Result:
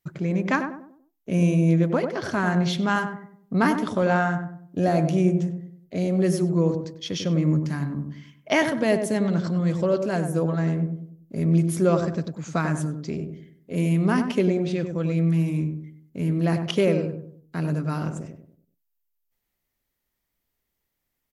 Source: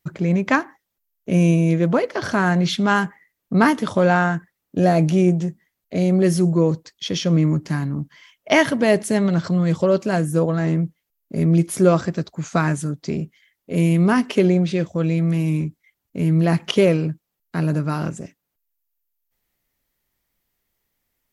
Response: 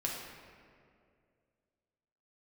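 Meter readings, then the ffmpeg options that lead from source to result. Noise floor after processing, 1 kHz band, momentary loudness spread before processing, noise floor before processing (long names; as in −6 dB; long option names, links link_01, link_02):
−80 dBFS, −4.5 dB, 12 LU, −79 dBFS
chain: -filter_complex "[0:a]asplit=2[link_01][link_02];[link_02]adelay=97,lowpass=frequency=930:poles=1,volume=-5dB,asplit=2[link_03][link_04];[link_04]adelay=97,lowpass=frequency=930:poles=1,volume=0.43,asplit=2[link_05][link_06];[link_06]adelay=97,lowpass=frequency=930:poles=1,volume=0.43,asplit=2[link_07][link_08];[link_08]adelay=97,lowpass=frequency=930:poles=1,volume=0.43,asplit=2[link_09][link_10];[link_10]adelay=97,lowpass=frequency=930:poles=1,volume=0.43[link_11];[link_01][link_03][link_05][link_07][link_09][link_11]amix=inputs=6:normalize=0,volume=-5.5dB"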